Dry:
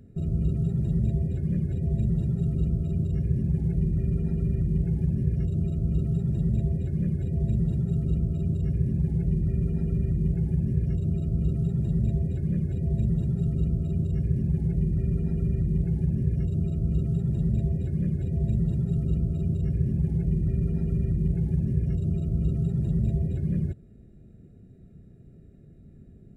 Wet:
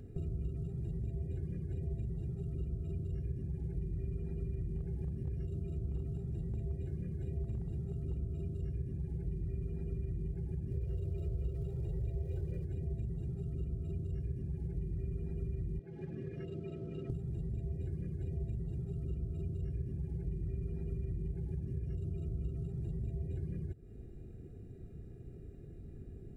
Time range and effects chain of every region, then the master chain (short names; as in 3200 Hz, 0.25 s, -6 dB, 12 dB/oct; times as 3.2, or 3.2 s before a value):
4.67–8.63 doubler 28 ms -11.5 dB + hard clip -16.5 dBFS
10.7–12.64 bell 690 Hz +10 dB 0.71 oct + comb 2.1 ms, depth 75% + crackle 300/s -49 dBFS
15.79–17.1 BPF 150–2100 Hz + tilt +3.5 dB/oct
whole clip: compressor, threshold -37 dBFS; comb 2.5 ms, depth 49%; gain +1 dB